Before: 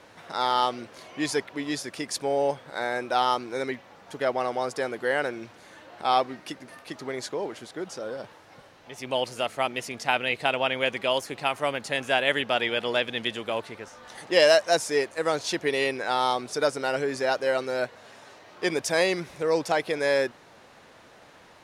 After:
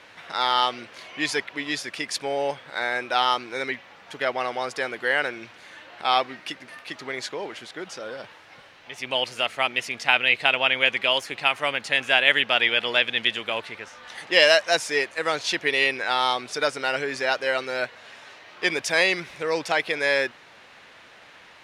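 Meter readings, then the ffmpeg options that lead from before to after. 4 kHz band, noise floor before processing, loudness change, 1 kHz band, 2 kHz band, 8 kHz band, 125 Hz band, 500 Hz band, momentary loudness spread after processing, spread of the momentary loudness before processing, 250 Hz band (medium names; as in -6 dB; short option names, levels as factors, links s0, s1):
+6.5 dB, -53 dBFS, +3.5 dB, +1.0 dB, +7.0 dB, +0.5 dB, -3.5 dB, -1.5 dB, 17 LU, 13 LU, -3.0 dB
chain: -af "equalizer=f=2500:t=o:w=2.2:g=12,volume=0.668"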